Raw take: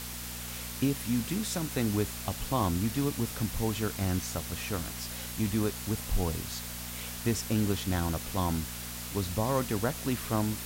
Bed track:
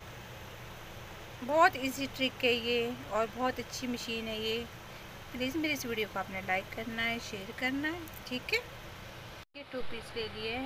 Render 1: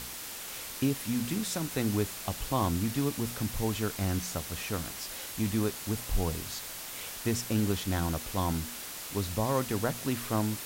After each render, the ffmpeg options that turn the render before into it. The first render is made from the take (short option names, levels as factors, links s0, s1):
-af "bandreject=f=60:t=h:w=4,bandreject=f=120:t=h:w=4,bandreject=f=180:t=h:w=4,bandreject=f=240:t=h:w=4"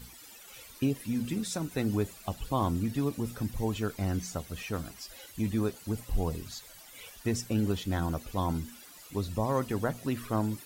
-af "afftdn=nr=15:nf=-41"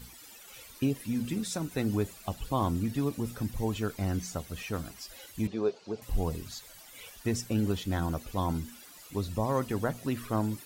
-filter_complex "[0:a]asettb=1/sr,asplit=3[s0][s1][s2];[s0]atrim=end=5.474[s3];[s1]atrim=start=5.47:end=6.02,asetpts=PTS-STARTPTS,afade=t=in:d=0.004:c=qsin,afade=t=out:st=0.546:d=0.004:c=qsin,highpass=240,equalizer=f=270:t=q:w=4:g=-9,equalizer=f=420:t=q:w=4:g=7,equalizer=f=660:t=q:w=4:g=4,equalizer=f=1300:t=q:w=4:g=-3,equalizer=f=1900:t=q:w=4:g=-8,equalizer=f=3200:t=q:w=4:g=-4,lowpass=f=5200:w=0.5412,lowpass=f=5200:w=1.3066[s4];[s2]atrim=start=6.016[s5];[s3][s4]acrossfade=d=0.004:c1=hsin:c2=qsin[s6];[s6][s5]acrossfade=d=0.004:c1=qsin:c2=hsin"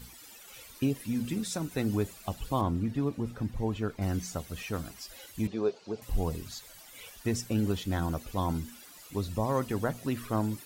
-filter_complex "[0:a]asettb=1/sr,asplit=3[s0][s1][s2];[s0]atrim=end=2.614[s3];[s1]atrim=start=2.61:end=4.02,asetpts=PTS-STARTPTS,afade=t=in:d=0.004:c=qsin,afade=t=out:st=1.406:d=0.004:c=qsin,lowpass=f=2100:p=1[s4];[s2]atrim=start=4.016[s5];[s3][s4]acrossfade=d=0.004:c1=hsin:c2=qsin[s6];[s6][s5]acrossfade=d=0.004:c1=qsin:c2=hsin"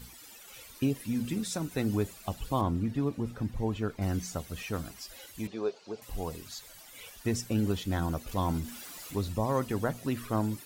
-filter_complex "[0:a]asettb=1/sr,asplit=3[s0][s1][s2];[s0]atrim=end=5.374[s3];[s1]atrim=start=5.37:end=6.59,asetpts=PTS-STARTPTS,afade=t=in:d=0.004:c=qsin,afade=t=out:st=1.216:d=0.004:c=qsin,lowshelf=f=280:g=-9[s4];[s2]atrim=start=6.586[s5];[s3][s4]acrossfade=d=0.004:c1=hsin:c2=qsin[s6];[s6][s5]acrossfade=d=0.004:c1=qsin:c2=hsin,asettb=1/sr,asplit=3[s7][s8][s9];[s7]atrim=end=8.274[s10];[s8]atrim=start=8.27:end=9.33,asetpts=PTS-STARTPTS,afade=t=in:d=0.004:c=qsin,afade=t=out:st=1.056:d=0.004:c=qsin,aeval=exprs='val(0)+0.5*0.00631*sgn(val(0))':c=same[s11];[s9]atrim=start=9.326[s12];[s10][s11]acrossfade=d=0.004:c1=hsin:c2=qsin[s13];[s13][s12]acrossfade=d=0.004:c1=qsin:c2=hsin"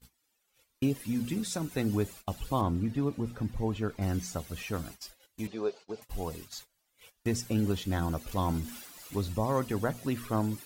-af "agate=range=0.0501:threshold=0.00562:ratio=16:detection=peak"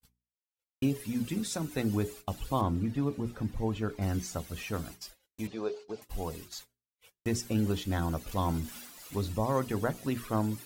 -af "agate=range=0.0224:threshold=0.00316:ratio=3:detection=peak,bandreject=f=60:t=h:w=6,bandreject=f=120:t=h:w=6,bandreject=f=180:t=h:w=6,bandreject=f=240:t=h:w=6,bandreject=f=300:t=h:w=6,bandreject=f=360:t=h:w=6,bandreject=f=420:t=h:w=6"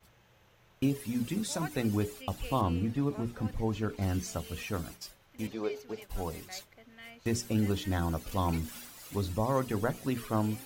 -filter_complex "[1:a]volume=0.141[s0];[0:a][s0]amix=inputs=2:normalize=0"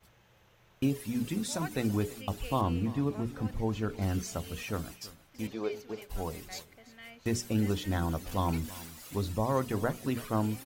-af "aecho=1:1:332:0.119"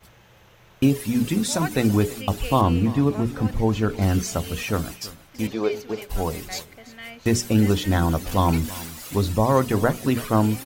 -af "volume=3.35"